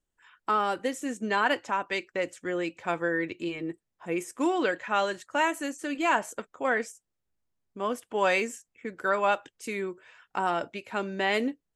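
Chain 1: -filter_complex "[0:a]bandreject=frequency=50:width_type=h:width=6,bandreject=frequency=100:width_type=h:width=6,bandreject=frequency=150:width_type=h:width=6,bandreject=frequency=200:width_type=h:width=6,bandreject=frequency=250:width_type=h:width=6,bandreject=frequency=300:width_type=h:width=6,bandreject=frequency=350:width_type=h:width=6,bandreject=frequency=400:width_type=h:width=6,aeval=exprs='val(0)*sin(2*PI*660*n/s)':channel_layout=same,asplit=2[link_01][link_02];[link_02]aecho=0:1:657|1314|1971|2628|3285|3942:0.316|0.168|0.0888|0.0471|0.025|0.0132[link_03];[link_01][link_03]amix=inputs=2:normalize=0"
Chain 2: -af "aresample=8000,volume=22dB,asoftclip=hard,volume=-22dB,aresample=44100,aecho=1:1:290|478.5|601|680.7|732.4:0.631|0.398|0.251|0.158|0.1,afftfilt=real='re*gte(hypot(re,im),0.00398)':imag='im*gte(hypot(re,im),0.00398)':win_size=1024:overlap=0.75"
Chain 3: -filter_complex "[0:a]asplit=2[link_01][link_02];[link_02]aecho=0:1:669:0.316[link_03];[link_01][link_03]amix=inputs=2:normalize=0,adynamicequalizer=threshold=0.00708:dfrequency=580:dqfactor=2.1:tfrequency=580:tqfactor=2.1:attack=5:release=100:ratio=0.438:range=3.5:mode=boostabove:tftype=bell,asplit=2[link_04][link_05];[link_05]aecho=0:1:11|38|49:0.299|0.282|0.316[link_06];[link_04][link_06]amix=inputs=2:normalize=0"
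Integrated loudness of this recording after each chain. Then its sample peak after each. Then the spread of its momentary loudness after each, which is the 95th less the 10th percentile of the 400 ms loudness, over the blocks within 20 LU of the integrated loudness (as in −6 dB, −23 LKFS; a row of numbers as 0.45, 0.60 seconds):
−32.0, −29.0, −26.0 LKFS; −12.0, −14.5, −7.5 dBFS; 11, 6, 11 LU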